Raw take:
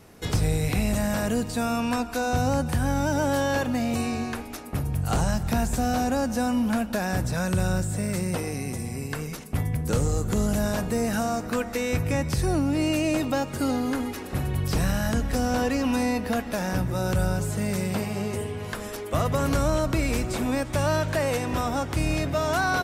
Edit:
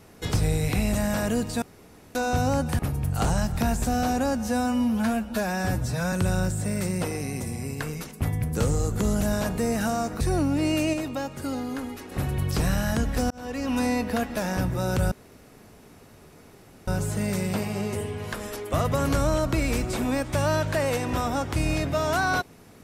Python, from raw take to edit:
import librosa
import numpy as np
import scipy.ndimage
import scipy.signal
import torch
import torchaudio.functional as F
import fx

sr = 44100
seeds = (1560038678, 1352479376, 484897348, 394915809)

y = fx.edit(x, sr, fx.room_tone_fill(start_s=1.62, length_s=0.53),
    fx.cut(start_s=2.79, length_s=1.91),
    fx.stretch_span(start_s=6.28, length_s=1.17, factor=1.5),
    fx.cut(start_s=11.53, length_s=0.84),
    fx.clip_gain(start_s=13.1, length_s=1.18, db=-5.0),
    fx.fade_in_span(start_s=15.47, length_s=0.51),
    fx.insert_room_tone(at_s=17.28, length_s=1.76), tone=tone)